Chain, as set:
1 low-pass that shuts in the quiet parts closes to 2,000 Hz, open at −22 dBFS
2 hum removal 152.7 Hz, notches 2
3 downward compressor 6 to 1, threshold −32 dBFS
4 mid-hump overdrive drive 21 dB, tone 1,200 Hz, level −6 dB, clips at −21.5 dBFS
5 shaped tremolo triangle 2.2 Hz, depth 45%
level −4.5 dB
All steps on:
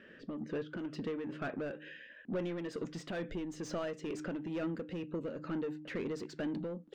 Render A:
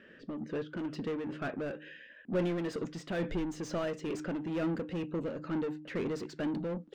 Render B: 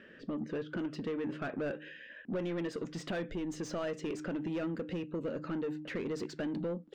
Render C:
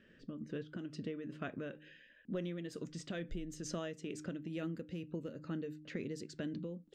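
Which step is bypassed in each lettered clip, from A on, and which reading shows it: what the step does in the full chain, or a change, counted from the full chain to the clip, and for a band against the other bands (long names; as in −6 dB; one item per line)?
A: 3, average gain reduction 5.0 dB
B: 5, change in momentary loudness spread −1 LU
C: 4, change in crest factor +4.0 dB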